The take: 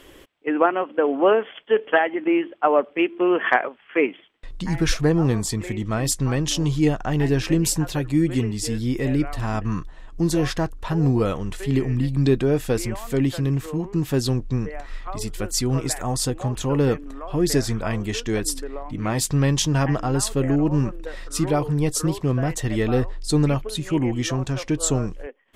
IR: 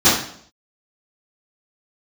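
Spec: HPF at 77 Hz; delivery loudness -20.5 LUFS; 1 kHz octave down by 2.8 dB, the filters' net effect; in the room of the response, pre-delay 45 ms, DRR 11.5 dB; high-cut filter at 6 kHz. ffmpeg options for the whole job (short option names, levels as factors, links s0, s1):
-filter_complex "[0:a]highpass=77,lowpass=6000,equalizer=f=1000:t=o:g=-4,asplit=2[s0][s1];[1:a]atrim=start_sample=2205,adelay=45[s2];[s1][s2]afir=irnorm=-1:irlink=0,volume=0.0168[s3];[s0][s3]amix=inputs=2:normalize=0,volume=1.33"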